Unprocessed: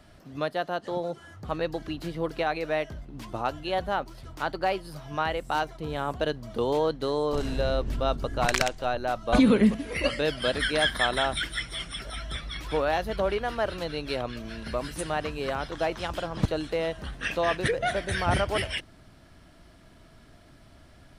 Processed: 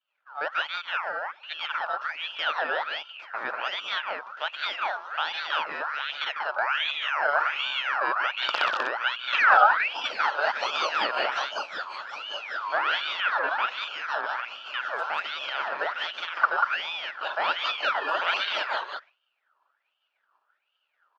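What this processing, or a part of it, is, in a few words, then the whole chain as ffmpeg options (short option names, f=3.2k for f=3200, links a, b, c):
voice changer toy: -af "agate=range=-33dB:threshold=-39dB:ratio=3:detection=peak,aecho=1:1:148.7|189.5:0.355|0.708,aeval=exprs='val(0)*sin(2*PI*2000*n/s+2000*0.5/1.3*sin(2*PI*1.3*n/s))':c=same,highpass=560,equalizer=f=600:t=q:w=4:g=7,equalizer=f=870:t=q:w=4:g=4,equalizer=f=1.4k:t=q:w=4:g=9,equalizer=f=2.1k:t=q:w=4:g=-8,equalizer=f=3.9k:t=q:w=4:g=-4,lowpass=f=4.1k:w=0.5412,lowpass=f=4.1k:w=1.3066"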